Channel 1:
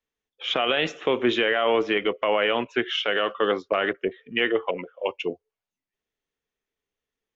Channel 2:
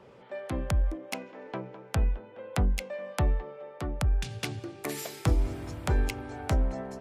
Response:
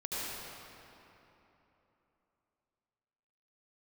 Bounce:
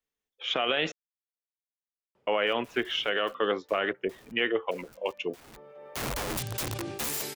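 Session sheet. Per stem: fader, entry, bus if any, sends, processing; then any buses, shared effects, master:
−4.5 dB, 0.00 s, muted 0:00.92–0:02.27, no send, no processing
+2.5 dB, 2.15 s, no send, wrap-around overflow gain 31 dB; level that may fall only so fast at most 43 dB per second; automatic ducking −23 dB, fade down 0.45 s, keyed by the first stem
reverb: not used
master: high-shelf EQ 6,400 Hz +5.5 dB

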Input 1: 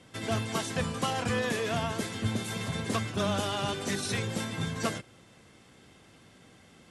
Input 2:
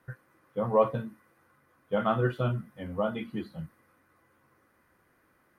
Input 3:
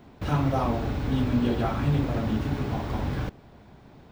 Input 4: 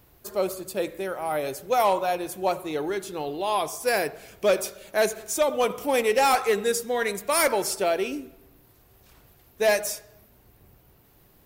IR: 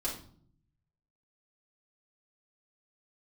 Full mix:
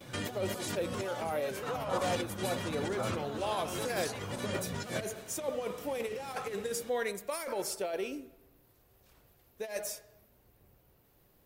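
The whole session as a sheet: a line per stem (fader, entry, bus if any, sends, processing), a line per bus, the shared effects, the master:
−1.5 dB, 0.00 s, no send, mains-hum notches 60/120 Hz; compressor whose output falls as the input rises −39 dBFS, ratio −1; pitch modulation by a square or saw wave square 3.7 Hz, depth 160 cents
−11.0 dB, 0.00 s, no send, amplitude tremolo 0.63 Hz, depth 100%
−16.0 dB, 1.35 s, no send, low-pass with resonance 1,300 Hz, resonance Q 2.5; spectral tilt +3.5 dB per octave
−11.0 dB, 0.00 s, no send, compressor whose output falls as the input rises −24 dBFS, ratio −0.5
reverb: not used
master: parametric band 530 Hz +4.5 dB 0.39 octaves

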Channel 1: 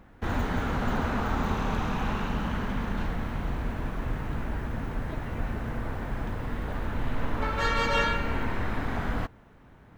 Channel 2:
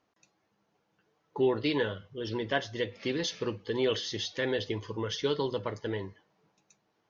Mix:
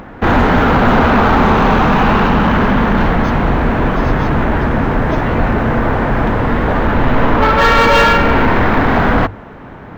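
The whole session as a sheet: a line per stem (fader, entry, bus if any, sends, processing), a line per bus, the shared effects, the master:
+2.5 dB, 0.00 s, no send, spectral tilt −3 dB per octave; mains-hum notches 50/100 Hz; mid-hump overdrive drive 29 dB, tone 4,400 Hz, clips at −3 dBFS
−5.0 dB, 0.00 s, no send, no processing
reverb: not used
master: upward compression, threshold −37 dBFS; linearly interpolated sample-rate reduction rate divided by 2×

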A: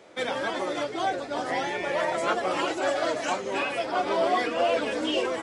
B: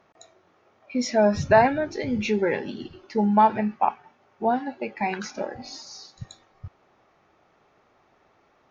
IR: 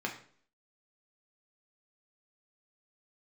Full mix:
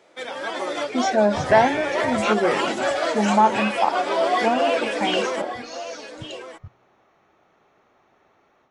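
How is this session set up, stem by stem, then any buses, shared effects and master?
−3.0 dB, 0.00 s, no send, echo send −12.5 dB, low-shelf EQ 200 Hz −11 dB
−7.0 dB, 0.00 s, send −20.5 dB, no echo send, notch filter 4,900 Hz, Q 6.3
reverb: on, RT60 0.50 s, pre-delay 3 ms
echo: single-tap delay 1,162 ms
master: low-shelf EQ 110 Hz −4.5 dB; automatic gain control gain up to 7.5 dB

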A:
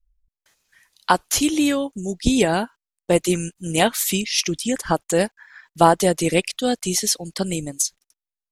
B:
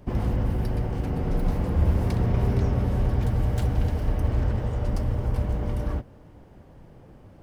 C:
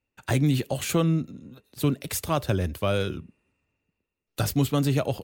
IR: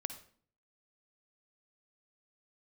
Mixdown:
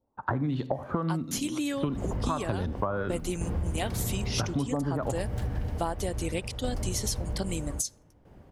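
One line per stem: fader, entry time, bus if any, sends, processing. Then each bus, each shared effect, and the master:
−12.5 dB, 0.00 s, no bus, send −21.5 dB, noise gate with hold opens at −47 dBFS; automatic gain control gain up to 13.5 dB
−2.5 dB, 1.80 s, bus A, no send, shaped tremolo saw down 0.62 Hz, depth 70%
+0.5 dB, 0.00 s, bus A, send −6.5 dB, de-essing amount 80%; graphic EQ with 15 bands 250 Hz +4 dB, 1,000 Hz +8 dB, 2,500 Hz −12 dB; auto-filter low-pass saw up 1.5 Hz 580–4,200 Hz
bus A: 0.0 dB, downward compressor, threshold −20 dBFS, peak gain reduction 7.5 dB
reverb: on, RT60 0.50 s, pre-delay 48 ms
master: downward compressor 6 to 1, threshold −26 dBFS, peak gain reduction 12 dB

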